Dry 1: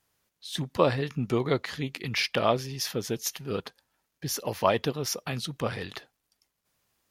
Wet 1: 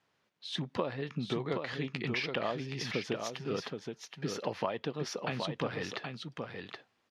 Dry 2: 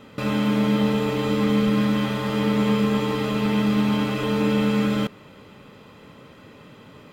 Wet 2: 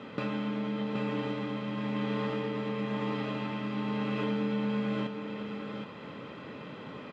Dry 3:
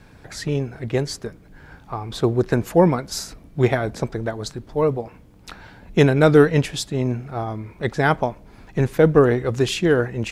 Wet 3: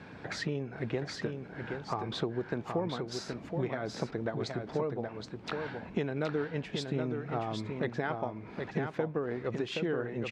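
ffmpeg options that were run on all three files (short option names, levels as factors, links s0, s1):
-af "acompressor=threshold=0.0251:ratio=12,highpass=140,lowpass=3600,aecho=1:1:773:0.531,volume=1.33"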